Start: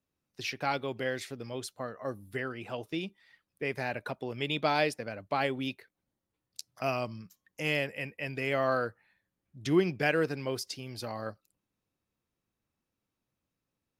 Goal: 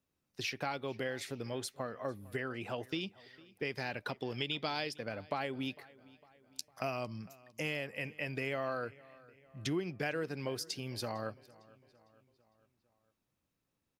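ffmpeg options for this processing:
-filter_complex "[0:a]asettb=1/sr,asplit=3[a][b][c];[a]atrim=end=2.914[d];[b]atrim=start=2.91:end=4.96,asetpts=PTS-STARTPTS,afade=t=in:d=0.004:c=qsin,afade=t=out:st=2.046:d=0.004:c=qsin,equalizer=f=630:t=o:w=0.33:g=-4,equalizer=f=3.15k:t=o:w=0.33:g=7,equalizer=f=5k:t=o:w=0.33:g=10,equalizer=f=10k:t=o:w=0.33:g=-4[e];[c]atrim=start=4.956[f];[d][e]acrossfade=d=0.004:c1=hsin:c2=qsin[g];[g][f]acrossfade=d=0.004:c1=qsin:c2=hsin,acompressor=threshold=-35dB:ratio=4,asplit=2[h][i];[i]adelay=454,lowpass=f=5k:p=1,volume=-22dB,asplit=2[j][k];[k]adelay=454,lowpass=f=5k:p=1,volume=0.53,asplit=2[l][m];[m]adelay=454,lowpass=f=5k:p=1,volume=0.53,asplit=2[n][o];[o]adelay=454,lowpass=f=5k:p=1,volume=0.53[p];[h][j][l][n][p]amix=inputs=5:normalize=0,volume=1dB"

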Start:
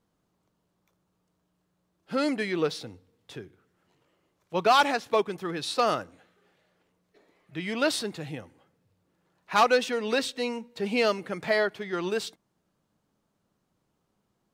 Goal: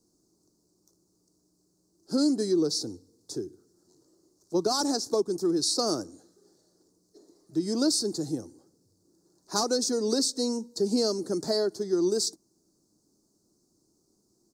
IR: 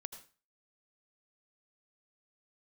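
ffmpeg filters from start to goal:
-filter_complex "[0:a]aexciter=amount=9.9:drive=9.2:freq=4.7k,firequalizer=gain_entry='entry(170,0);entry(340,13);entry(500,-1);entry(1500,-11);entry(2300,-28);entry(4500,-5);entry(12000,-22)':delay=0.05:min_phase=1,acrossover=split=180[a][b];[b]acompressor=threshold=-23dB:ratio=5[c];[a][c]amix=inputs=2:normalize=0"

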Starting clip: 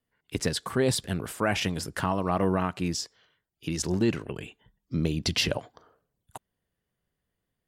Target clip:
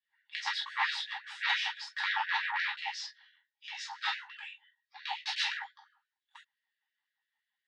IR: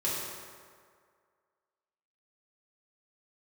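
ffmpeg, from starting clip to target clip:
-filter_complex "[0:a]flanger=delay=16:depth=4.3:speed=0.7,aeval=exprs='0.2*(cos(1*acos(clip(val(0)/0.2,-1,1)))-cos(1*PI/2))+0.0398*(cos(2*acos(clip(val(0)/0.2,-1,1)))-cos(2*PI/2))+0.00631*(cos(3*acos(clip(val(0)/0.2,-1,1)))-cos(3*PI/2))+0.0708*(cos(7*acos(clip(val(0)/0.2,-1,1)))-cos(7*PI/2))+0.0112*(cos(8*acos(clip(val(0)/0.2,-1,1)))-cos(8*PI/2))':c=same,highpass=170,equalizer=f=340:t=q:w=4:g=9,equalizer=f=820:t=q:w=4:g=5,equalizer=f=1.3k:t=q:w=4:g=-7,equalizer=f=1.9k:t=q:w=4:g=7,equalizer=f=3.7k:t=q:w=4:g=5,lowpass=f=4.9k:w=0.5412,lowpass=f=4.9k:w=1.3066[a];[1:a]atrim=start_sample=2205,atrim=end_sample=3528,asetrate=66150,aresample=44100[b];[a][b]afir=irnorm=-1:irlink=0,afftfilt=real='re*gte(b*sr/1024,730*pow(1500/730,0.5+0.5*sin(2*PI*5.8*pts/sr)))':imag='im*gte(b*sr/1024,730*pow(1500/730,0.5+0.5*sin(2*PI*5.8*pts/sr)))':win_size=1024:overlap=0.75,volume=-2.5dB"

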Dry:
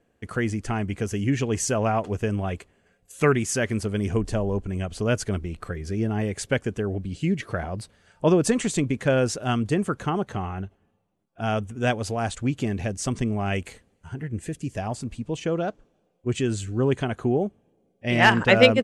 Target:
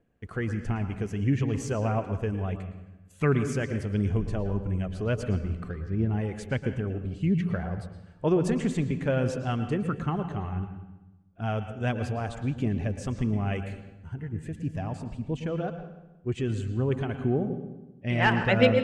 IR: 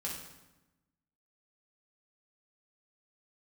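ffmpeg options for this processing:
-filter_complex "[0:a]asettb=1/sr,asplit=3[a][b][c];[a]atrim=end=5.704[d];[b]atrim=start=5.7:end=6.12,asetpts=PTS-STARTPTS,afade=t=in:d=0.004:c=qsin,afade=t=out:st=0.416:d=0.004:c=qsin,adynamicsmooth=sensitivity=6:basefreq=2.3k[e];[c]atrim=start=6.116[f];[d][e]acrossfade=d=0.004:c1=hsin:c2=qsin[g];[g][f]acrossfade=d=0.004:c1=qsin:c2=hsin,aphaser=in_gain=1:out_gain=1:delay=2.9:decay=0.29:speed=1.5:type=triangular,bass=f=250:g=5,treble=f=4k:g=-9,asplit=2[h][i];[1:a]atrim=start_sample=2205,lowpass=6k,adelay=111[j];[i][j]afir=irnorm=-1:irlink=0,volume=-9.5dB[k];[h][k]amix=inputs=2:normalize=0,volume=-7dB"

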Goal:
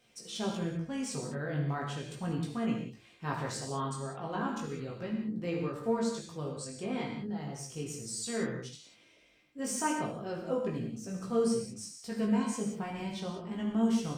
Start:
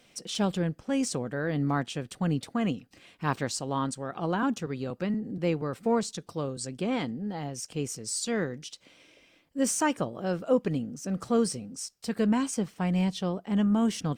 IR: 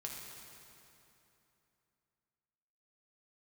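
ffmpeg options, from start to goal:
-filter_complex "[0:a]flanger=delay=17.5:depth=2.1:speed=0.36[a];[1:a]atrim=start_sample=2205,afade=t=out:st=0.25:d=0.01,atrim=end_sample=11466[b];[a][b]afir=irnorm=-1:irlink=0"

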